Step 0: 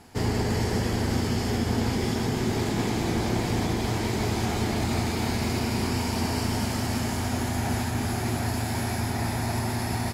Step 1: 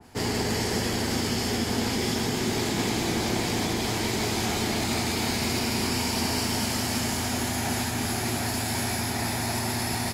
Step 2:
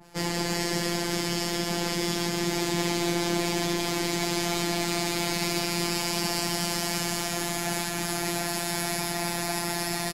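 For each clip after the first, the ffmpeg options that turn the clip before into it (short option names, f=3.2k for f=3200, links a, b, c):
-filter_complex "[0:a]acrossover=split=170|990|2300[a][b][c][d];[a]alimiter=level_in=7dB:limit=-24dB:level=0:latency=1:release=115,volume=-7dB[e];[e][b][c][d]amix=inputs=4:normalize=0,adynamicequalizer=threshold=0.00355:dfrequency=2000:dqfactor=0.7:tfrequency=2000:tqfactor=0.7:attack=5:release=100:ratio=0.375:range=3:mode=boostabove:tftype=highshelf"
-af "afftfilt=real='hypot(re,im)*cos(PI*b)':imag='0':win_size=1024:overlap=0.75,aecho=1:1:235:0.2,volume=3dB"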